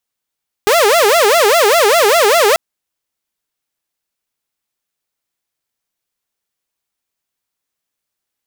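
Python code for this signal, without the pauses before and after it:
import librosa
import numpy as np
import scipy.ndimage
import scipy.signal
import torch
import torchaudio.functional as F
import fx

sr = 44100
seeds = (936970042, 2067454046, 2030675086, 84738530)

y = fx.siren(sr, length_s=1.89, kind='wail', low_hz=399.0, high_hz=693.0, per_s=5.0, wave='saw', level_db=-5.5)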